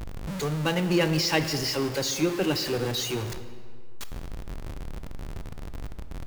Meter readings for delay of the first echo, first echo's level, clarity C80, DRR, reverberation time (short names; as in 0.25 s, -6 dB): none, none, 11.5 dB, 9.5 dB, 2.1 s